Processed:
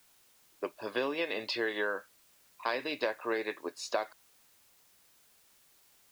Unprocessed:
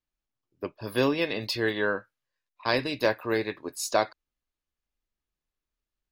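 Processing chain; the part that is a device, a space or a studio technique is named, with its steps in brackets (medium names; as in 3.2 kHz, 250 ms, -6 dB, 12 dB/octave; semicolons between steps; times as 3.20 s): baby monitor (band-pass 390–3600 Hz; compression, threshold -30 dBFS, peak gain reduction 11.5 dB; white noise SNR 27 dB); trim +1.5 dB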